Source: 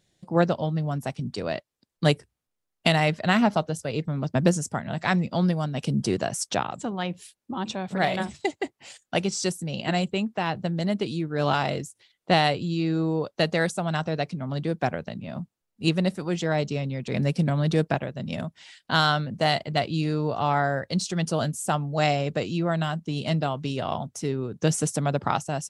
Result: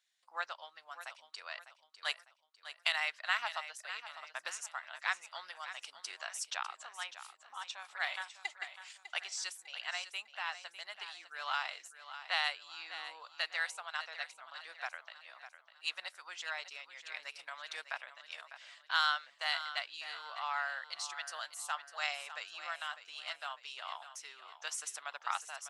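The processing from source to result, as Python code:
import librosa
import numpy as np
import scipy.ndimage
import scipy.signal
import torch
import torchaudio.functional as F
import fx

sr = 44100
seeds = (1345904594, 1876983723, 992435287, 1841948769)

y = scipy.signal.sosfilt(scipy.signal.butter(4, 1100.0, 'highpass', fs=sr, output='sos'), x)
y = fx.high_shelf(y, sr, hz=5000.0, db=-6.5)
y = fx.echo_feedback(y, sr, ms=601, feedback_pct=41, wet_db=-12.0)
y = F.gain(torch.from_numpy(y), -5.5).numpy()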